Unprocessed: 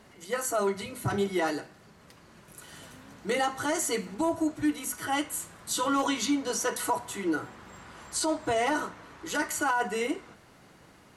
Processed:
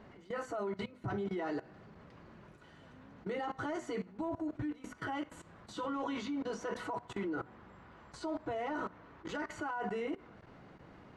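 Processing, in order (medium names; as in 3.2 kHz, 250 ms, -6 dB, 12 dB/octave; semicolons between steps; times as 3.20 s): level held to a coarse grid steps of 19 dB; tape spacing loss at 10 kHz 30 dB; trim +3.5 dB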